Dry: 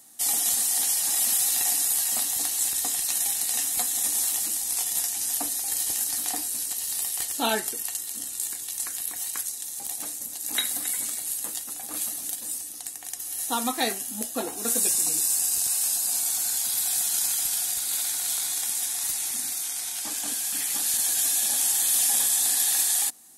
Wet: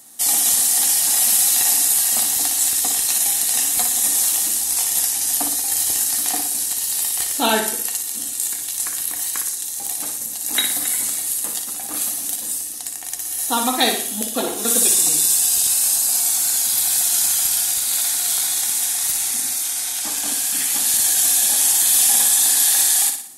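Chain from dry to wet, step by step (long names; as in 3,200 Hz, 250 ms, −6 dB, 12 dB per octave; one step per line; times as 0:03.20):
0:13.80–0:15.74: parametric band 3,400 Hz +8 dB 0.34 octaves
flutter between parallel walls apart 10.1 metres, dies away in 0.54 s
level +6.5 dB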